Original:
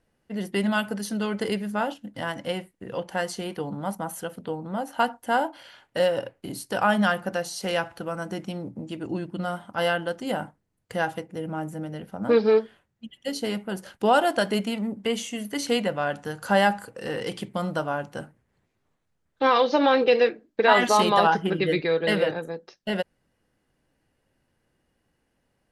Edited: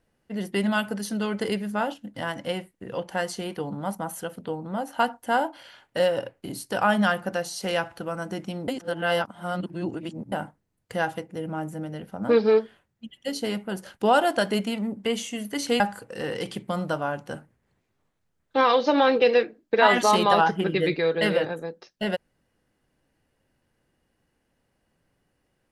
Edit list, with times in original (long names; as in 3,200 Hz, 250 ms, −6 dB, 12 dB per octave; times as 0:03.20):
0:08.68–0:10.32: reverse
0:15.80–0:16.66: remove